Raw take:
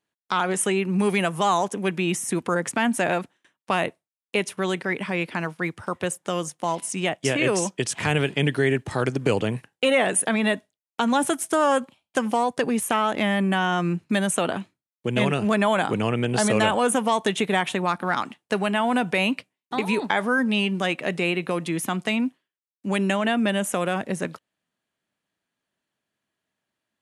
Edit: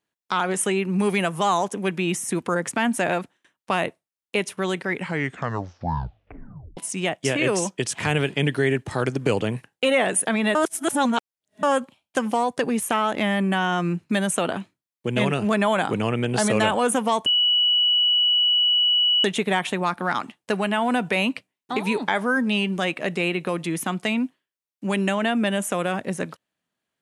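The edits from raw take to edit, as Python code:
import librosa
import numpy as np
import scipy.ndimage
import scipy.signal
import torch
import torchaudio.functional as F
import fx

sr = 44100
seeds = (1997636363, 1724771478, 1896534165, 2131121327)

y = fx.edit(x, sr, fx.tape_stop(start_s=4.9, length_s=1.87),
    fx.reverse_span(start_s=10.55, length_s=1.08),
    fx.insert_tone(at_s=17.26, length_s=1.98, hz=2940.0, db=-16.0), tone=tone)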